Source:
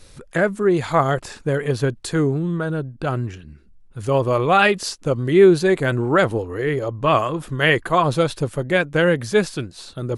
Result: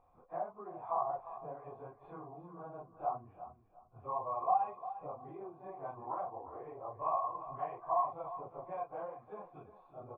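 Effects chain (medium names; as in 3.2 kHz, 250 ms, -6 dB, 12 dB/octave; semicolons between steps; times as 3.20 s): phase randomisation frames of 100 ms; dynamic bell 920 Hz, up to +7 dB, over -32 dBFS, Q 1.5; compression 6:1, threshold -24 dBFS, peak gain reduction 19 dB; cascade formant filter a; feedback delay 352 ms, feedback 25%, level -13 dB; trim +1 dB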